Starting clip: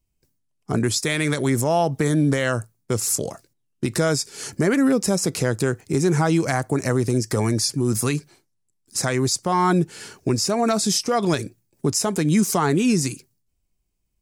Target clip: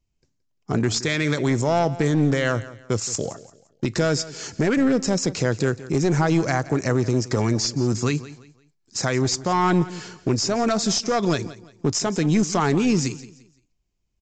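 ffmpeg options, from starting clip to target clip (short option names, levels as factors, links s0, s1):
-af "aresample=16000,aeval=exprs='clip(val(0),-1,0.106)':c=same,aresample=44100,aecho=1:1:172|344|516:0.141|0.0438|0.0136"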